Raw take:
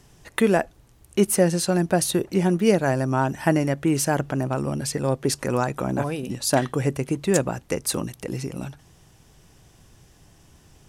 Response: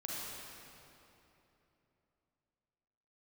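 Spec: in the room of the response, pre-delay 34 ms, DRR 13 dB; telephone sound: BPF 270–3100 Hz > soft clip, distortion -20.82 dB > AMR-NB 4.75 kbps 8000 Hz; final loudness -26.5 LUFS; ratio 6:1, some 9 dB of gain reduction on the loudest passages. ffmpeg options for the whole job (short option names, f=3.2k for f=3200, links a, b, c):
-filter_complex "[0:a]acompressor=threshold=-23dB:ratio=6,asplit=2[a][b];[1:a]atrim=start_sample=2205,adelay=34[c];[b][c]afir=irnorm=-1:irlink=0,volume=-14.5dB[d];[a][d]amix=inputs=2:normalize=0,highpass=270,lowpass=3.1k,asoftclip=threshold=-17dB,volume=7.5dB" -ar 8000 -c:a libopencore_amrnb -b:a 4750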